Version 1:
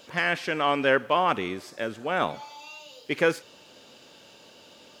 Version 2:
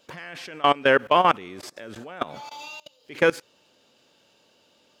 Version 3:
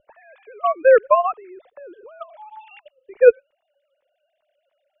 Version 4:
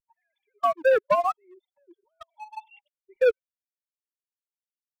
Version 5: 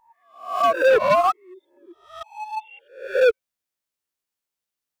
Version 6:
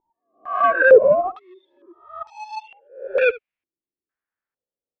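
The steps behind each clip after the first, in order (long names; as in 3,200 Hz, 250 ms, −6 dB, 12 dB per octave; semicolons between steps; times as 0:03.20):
output level in coarse steps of 23 dB; level +7 dB
three sine waves on the formant tracks; spectral tilt −4.5 dB per octave; expander for the loud parts 1.5 to 1, over −23 dBFS; level +3.5 dB
spectral dynamics exaggerated over time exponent 2; leveller curve on the samples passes 2; downward compressor 2 to 1, threshold −26 dBFS, peak gain reduction 11 dB
peak hold with a rise ahead of every peak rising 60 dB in 0.49 s; in parallel at +2.5 dB: brickwall limiter −20 dBFS, peak gain reduction 8.5 dB; on the sum: gain into a clipping stage and back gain 12.5 dB
single-tap delay 73 ms −19.5 dB; low-pass on a step sequencer 2.2 Hz 350–5,200 Hz; level −2.5 dB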